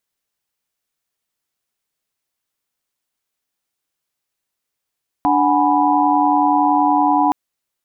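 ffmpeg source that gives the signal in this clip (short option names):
-f lavfi -i "aevalsrc='0.133*(sin(2*PI*293.66*t)+sin(2*PI*739.99*t)+sin(2*PI*830.61*t)+sin(2*PI*987.77*t))':d=2.07:s=44100"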